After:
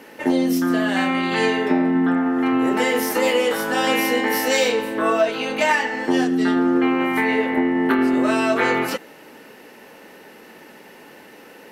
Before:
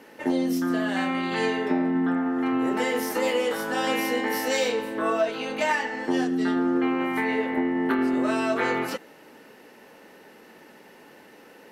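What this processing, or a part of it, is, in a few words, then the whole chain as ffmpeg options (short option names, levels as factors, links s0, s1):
presence and air boost: -af "equalizer=f=2500:t=o:w=0.77:g=2,highshelf=f=11000:g=4.5,volume=1.88"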